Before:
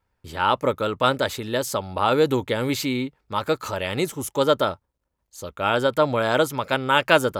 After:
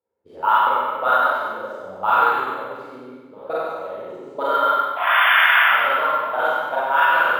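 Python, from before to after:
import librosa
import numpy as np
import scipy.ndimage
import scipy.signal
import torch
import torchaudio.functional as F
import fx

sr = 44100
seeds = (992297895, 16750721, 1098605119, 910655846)

p1 = scipy.signal.sosfilt(scipy.signal.butter(2, 62.0, 'highpass', fs=sr, output='sos'), x)
p2 = fx.high_shelf(p1, sr, hz=3300.0, db=4.5)
p3 = fx.hum_notches(p2, sr, base_hz=60, count=6)
p4 = fx.level_steps(p3, sr, step_db=20)
p5 = fx.spec_paint(p4, sr, seeds[0], shape='noise', start_s=4.96, length_s=0.67, low_hz=590.0, high_hz=3600.0, level_db=-21.0)
p6 = 10.0 ** (-7.0 / 20.0) * np.tanh(p5 / 10.0 ** (-7.0 / 20.0))
p7 = fx.auto_wah(p6, sr, base_hz=440.0, top_hz=1600.0, q=3.3, full_db=-17.5, direction='up')
p8 = p7 + fx.echo_single(p7, sr, ms=97, db=-5.5, dry=0)
p9 = fx.rev_schroeder(p8, sr, rt60_s=1.4, comb_ms=32, drr_db=-9.5)
p10 = np.interp(np.arange(len(p9)), np.arange(len(p9))[::3], p9[::3])
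y = p10 * 10.0 ** (3.5 / 20.0)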